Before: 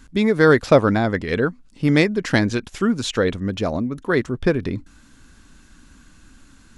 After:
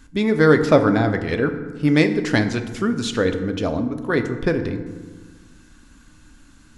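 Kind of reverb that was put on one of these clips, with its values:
feedback delay network reverb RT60 1.4 s, low-frequency decay 1.4×, high-frequency decay 0.5×, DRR 7 dB
level −1.5 dB

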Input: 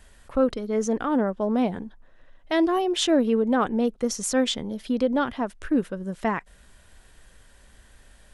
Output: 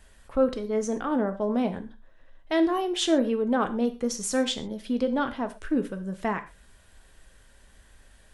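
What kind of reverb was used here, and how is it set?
reverb whose tail is shaped and stops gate 150 ms falling, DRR 7.5 dB
level −3 dB

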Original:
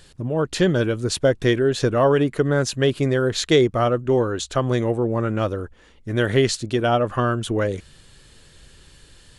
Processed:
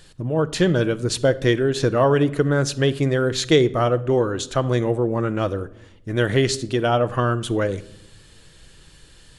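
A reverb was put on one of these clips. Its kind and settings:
rectangular room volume 2,100 cubic metres, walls furnished, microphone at 0.61 metres

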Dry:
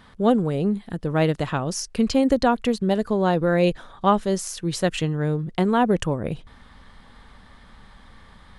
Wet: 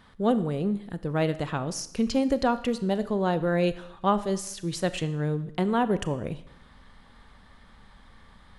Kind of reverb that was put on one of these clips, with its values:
four-comb reverb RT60 0.81 s, combs from 27 ms, DRR 13.5 dB
level −5 dB

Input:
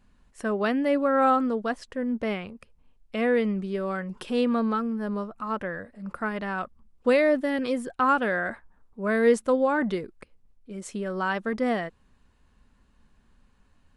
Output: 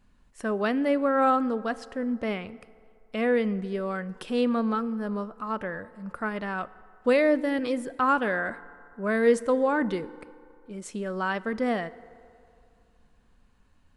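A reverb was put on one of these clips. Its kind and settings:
feedback delay network reverb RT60 2.5 s, low-frequency decay 0.7×, high-frequency decay 0.5×, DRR 17 dB
level −1 dB

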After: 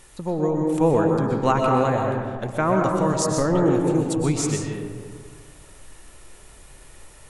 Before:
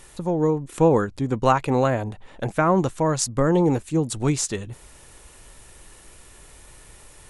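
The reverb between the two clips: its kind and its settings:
comb and all-pass reverb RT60 1.8 s, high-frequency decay 0.4×, pre-delay 85 ms, DRR 0.5 dB
level −2.5 dB

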